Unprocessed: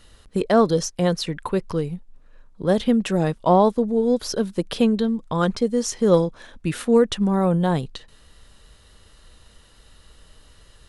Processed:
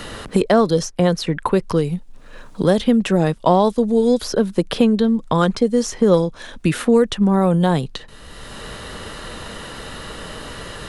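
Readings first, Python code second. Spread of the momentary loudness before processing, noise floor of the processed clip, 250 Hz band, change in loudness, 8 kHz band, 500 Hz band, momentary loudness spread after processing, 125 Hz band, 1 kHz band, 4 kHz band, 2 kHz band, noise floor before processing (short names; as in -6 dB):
10 LU, -41 dBFS, +4.0 dB, +3.5 dB, +1.5 dB, +3.0 dB, 17 LU, +4.0 dB, +3.0 dB, +4.0 dB, +5.5 dB, -53 dBFS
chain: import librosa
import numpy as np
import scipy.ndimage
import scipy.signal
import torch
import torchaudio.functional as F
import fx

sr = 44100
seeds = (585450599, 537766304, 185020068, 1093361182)

y = fx.band_squash(x, sr, depth_pct=70)
y = F.gain(torch.from_numpy(y), 4.0).numpy()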